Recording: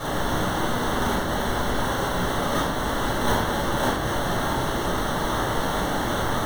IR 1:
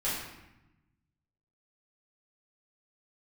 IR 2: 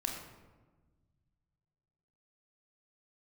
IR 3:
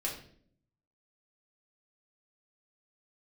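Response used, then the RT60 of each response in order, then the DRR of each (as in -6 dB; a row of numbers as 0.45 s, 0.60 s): 1; 0.90 s, 1.3 s, 0.55 s; -10.5 dB, 0.5 dB, -4.0 dB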